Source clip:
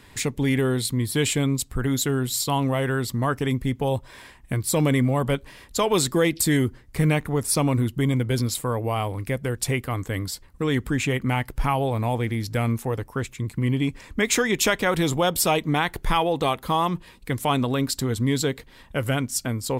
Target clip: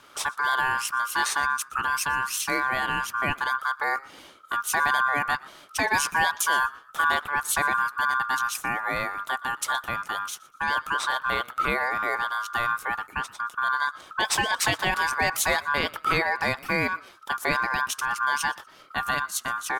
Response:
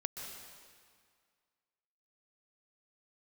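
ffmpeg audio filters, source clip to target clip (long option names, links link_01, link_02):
-filter_complex "[0:a]aeval=exprs='val(0)*sin(2*PI*1300*n/s)':channel_layout=same,asplit=3[link_01][link_02][link_03];[link_02]adelay=120,afreqshift=46,volume=-23dB[link_04];[link_03]adelay=240,afreqshift=92,volume=-33.2dB[link_05];[link_01][link_04][link_05]amix=inputs=3:normalize=0"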